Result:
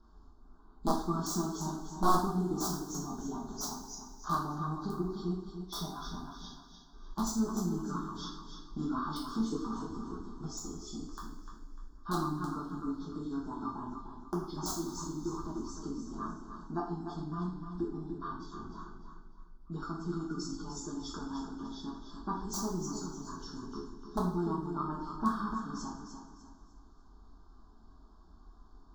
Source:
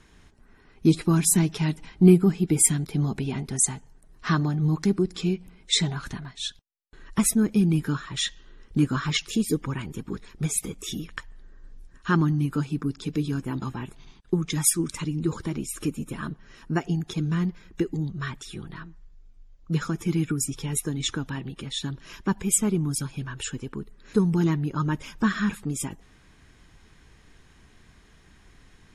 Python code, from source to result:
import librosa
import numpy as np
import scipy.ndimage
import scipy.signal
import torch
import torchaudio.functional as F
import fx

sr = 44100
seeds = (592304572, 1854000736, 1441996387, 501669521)

p1 = fx.freq_compress(x, sr, knee_hz=3200.0, ratio=1.5)
p2 = fx.dynamic_eq(p1, sr, hz=260.0, q=0.79, threshold_db=-35.0, ratio=4.0, max_db=-6)
p3 = p2 + fx.echo_feedback(p2, sr, ms=299, feedback_pct=33, wet_db=-8, dry=0)
p4 = (np.mod(10.0 ** (15.0 / 20.0) * p3 + 1.0, 2.0) - 1.0) / 10.0 ** (15.0 / 20.0)
p5 = scipy.signal.sosfilt(scipy.signal.cheby1(2, 1.0, [1400.0, 4400.0], 'bandstop', fs=sr, output='sos'), p4)
p6 = fx.bass_treble(p5, sr, bass_db=1, treble_db=-14)
p7 = fx.fixed_phaser(p6, sr, hz=510.0, stages=6)
p8 = fx.rev_double_slope(p7, sr, seeds[0], early_s=0.52, late_s=2.1, knee_db=-17, drr_db=-4.0)
y = F.gain(torch.from_numpy(p8), -6.0).numpy()